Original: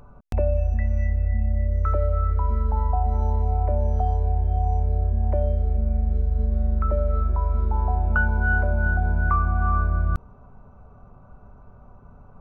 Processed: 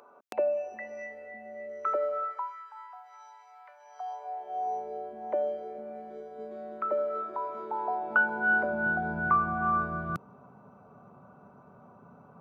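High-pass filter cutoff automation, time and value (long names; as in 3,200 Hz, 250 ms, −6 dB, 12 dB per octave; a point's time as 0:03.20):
high-pass filter 24 dB per octave
0:02.17 360 Hz
0:02.57 1,400 Hz
0:03.77 1,400 Hz
0:04.74 330 Hz
0:07.94 330 Hz
0:09.18 150 Hz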